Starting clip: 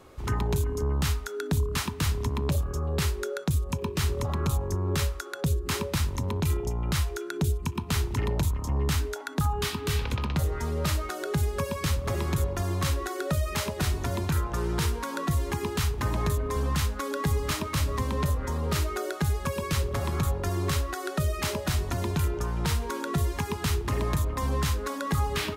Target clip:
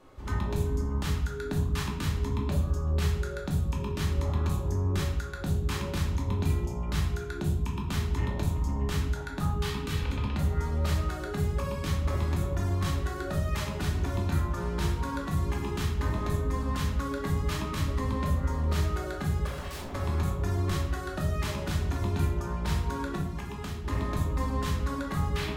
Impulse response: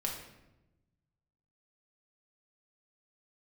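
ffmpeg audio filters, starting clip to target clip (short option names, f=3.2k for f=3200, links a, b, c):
-filter_complex "[0:a]highshelf=f=5.2k:g=-6,asettb=1/sr,asplit=3[a][b][c];[a]atrim=end=19.464[d];[b]atrim=start=19.46:end=19.93,asetpts=PTS-STARTPTS,afade=t=in:d=0.004:c=qsin,afade=t=out:st=0.466:d=0.004:c=qsin,aeval=exprs='0.0237*(abs(mod(val(0)/0.0237+3,4)-2)-1)':c=same[e];[c]atrim=start=19.926[f];[d][e]acrossfade=d=0.004:c1=hsin:c2=qsin[g];[g][f]acrossfade=d=0.004:c1=qsin:c2=hsin,asettb=1/sr,asplit=3[h][i][j];[h]atrim=end=23.174[k];[i]atrim=start=23.17:end=23.84,asetpts=PTS-STARTPTS,afade=t=in:d=0.004:c=qsin,afade=t=out:st=0.666:d=0.004:c=qsin,acompressor=threshold=-31dB:ratio=6[l];[j]atrim=start=23.836[m];[k][l]acrossfade=d=0.004:c1=hsin:c2=qsin[n];[n][m]acrossfade=d=0.004:c1=qsin:c2=hsin[o];[1:a]atrim=start_sample=2205,asetrate=61740,aresample=44100[p];[o][p]afir=irnorm=-1:irlink=0,volume=-2.5dB"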